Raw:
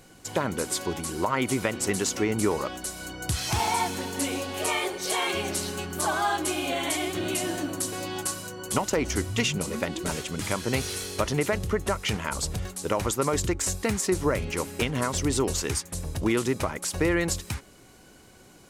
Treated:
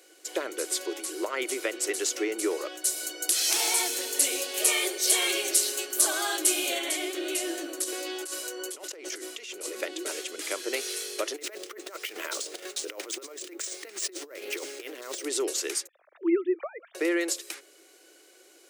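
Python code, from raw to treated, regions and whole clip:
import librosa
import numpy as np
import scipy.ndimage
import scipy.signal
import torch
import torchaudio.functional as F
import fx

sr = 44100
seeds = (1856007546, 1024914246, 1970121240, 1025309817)

y = fx.high_shelf(x, sr, hz=4200.0, db=11.0, at=(2.84, 6.78), fade=0.02)
y = fx.dmg_buzz(y, sr, base_hz=60.0, harmonics=13, level_db=-42.0, tilt_db=-4, odd_only=False, at=(2.84, 6.78), fade=0.02)
y = fx.chain(y, sr, fx.highpass(hz=190.0, slope=12),
    fx.over_compress(threshold_db=-35.0, ratio=-1.0), at=(7.84, 9.81))
y = fx.chain(y, sr, fx.over_compress(threshold_db=-31.0, ratio=-0.5),
    fx.resample_bad(factor=3, down='none', up='hold'),
    fx.doppler_dist(depth_ms=0.14), at=(11.36, 15.24))
y = fx.chain(y, sr, fx.sine_speech(),
    fx.bessel_lowpass(hz=1300.0, order=2), at=(15.87, 16.95))
y = scipy.signal.sosfilt(scipy.signal.cheby1(5, 1.0, 330.0, 'highpass', fs=sr, output='sos'), y)
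y = fx.peak_eq(y, sr, hz=930.0, db=-11.5, octaves=0.77)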